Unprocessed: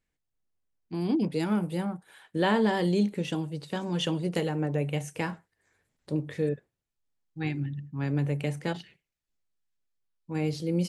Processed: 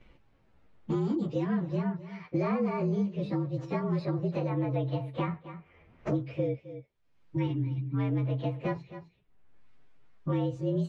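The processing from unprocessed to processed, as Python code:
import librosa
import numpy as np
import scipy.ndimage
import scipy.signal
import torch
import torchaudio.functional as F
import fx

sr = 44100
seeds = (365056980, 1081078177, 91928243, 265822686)

y = fx.partial_stretch(x, sr, pct=114)
y = scipy.signal.sosfilt(scipy.signal.butter(2, 2200.0, 'lowpass', fs=sr, output='sos'), y)
y = y + 10.0 ** (-19.5 / 20.0) * np.pad(y, (int(260 * sr / 1000.0), 0))[:len(y)]
y = fx.band_squash(y, sr, depth_pct=100)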